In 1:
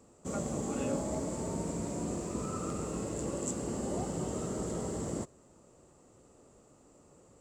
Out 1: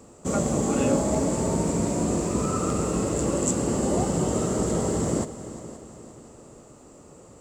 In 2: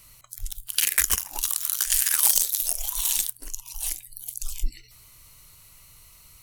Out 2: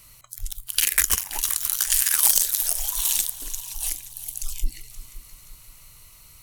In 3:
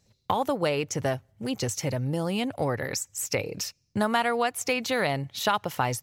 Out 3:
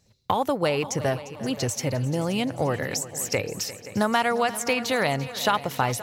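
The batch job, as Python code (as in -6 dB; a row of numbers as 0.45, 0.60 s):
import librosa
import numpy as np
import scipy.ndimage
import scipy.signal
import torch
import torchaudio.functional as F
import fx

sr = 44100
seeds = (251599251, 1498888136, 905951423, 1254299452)

y = fx.echo_heads(x, sr, ms=175, heads='second and third', feedback_pct=48, wet_db=-16.5)
y = y * 10.0 ** (-26 / 20.0) / np.sqrt(np.mean(np.square(y)))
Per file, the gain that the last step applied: +11.0, +1.5, +2.0 dB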